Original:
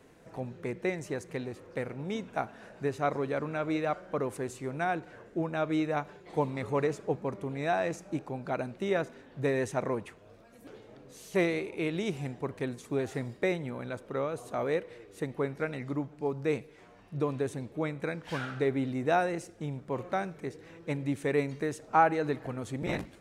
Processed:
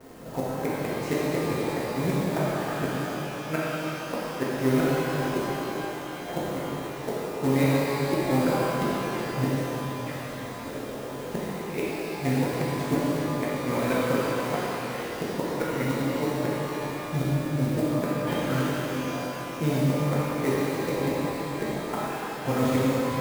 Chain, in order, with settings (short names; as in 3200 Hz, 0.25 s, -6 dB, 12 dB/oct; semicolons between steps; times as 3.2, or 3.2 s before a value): low-pass opened by the level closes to 1100 Hz, open at -25.5 dBFS; flipped gate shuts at -25 dBFS, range -29 dB; in parallel at -7 dB: companded quantiser 4-bit; on the sum: high shelf 6000 Hz +10 dB; shimmer reverb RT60 3.6 s, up +12 st, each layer -8 dB, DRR -8 dB; gain +4 dB